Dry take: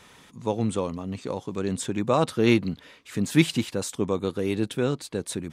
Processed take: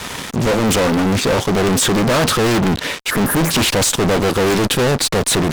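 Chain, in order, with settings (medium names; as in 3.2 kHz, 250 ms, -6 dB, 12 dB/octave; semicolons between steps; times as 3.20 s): spectral selection erased 3.11–3.51 s, 1.8–9.8 kHz; fuzz box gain 45 dB, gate -53 dBFS; loudspeaker Doppler distortion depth 0.79 ms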